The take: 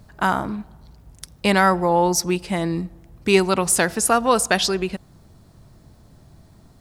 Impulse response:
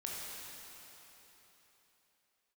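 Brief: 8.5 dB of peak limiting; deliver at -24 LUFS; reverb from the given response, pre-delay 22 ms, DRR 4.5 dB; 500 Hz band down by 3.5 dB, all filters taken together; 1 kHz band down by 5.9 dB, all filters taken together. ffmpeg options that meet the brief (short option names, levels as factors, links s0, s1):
-filter_complex "[0:a]equalizer=f=500:t=o:g=-3,equalizer=f=1000:t=o:g=-7,alimiter=limit=0.224:level=0:latency=1,asplit=2[s0][s1];[1:a]atrim=start_sample=2205,adelay=22[s2];[s1][s2]afir=irnorm=-1:irlink=0,volume=0.501[s3];[s0][s3]amix=inputs=2:normalize=0,volume=0.944"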